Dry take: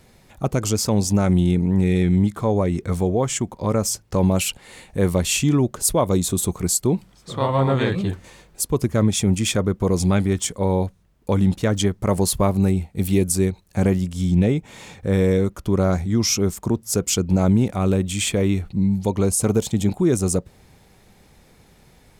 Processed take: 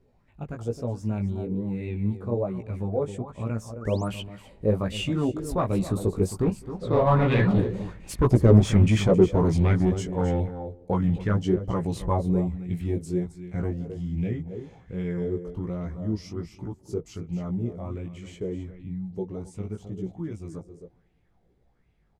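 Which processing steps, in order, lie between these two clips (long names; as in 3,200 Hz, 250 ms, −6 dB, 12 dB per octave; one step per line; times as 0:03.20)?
source passing by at 0:08.14, 23 m/s, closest 26 metres
chorus effect 1.2 Hz, delay 16 ms, depth 3.4 ms
in parallel at −6.5 dB: wave folding −25 dBFS
on the sum: high-shelf EQ 7,500 Hz −6 dB
single-tap delay 265 ms −12 dB
sound drawn into the spectrogram rise, 0:03.81–0:04.08, 1,100–11,000 Hz −41 dBFS
spectral tilt −2.5 dB per octave
floating-point word with a short mantissa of 8 bits
on a send: feedback echo with a low-pass in the loop 204 ms, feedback 42%, low-pass 1,400 Hz, level −24 dB
on the sum: auto-filter bell 1.3 Hz 390–2,700 Hz +12 dB
level −2.5 dB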